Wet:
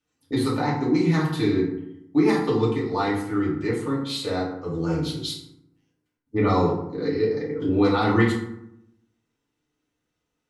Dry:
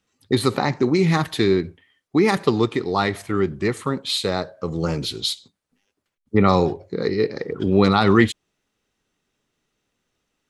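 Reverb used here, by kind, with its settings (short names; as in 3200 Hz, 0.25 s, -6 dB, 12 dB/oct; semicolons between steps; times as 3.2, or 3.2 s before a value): FDN reverb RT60 0.79 s, low-frequency decay 1.3×, high-frequency decay 0.5×, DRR -6.5 dB; gain -12 dB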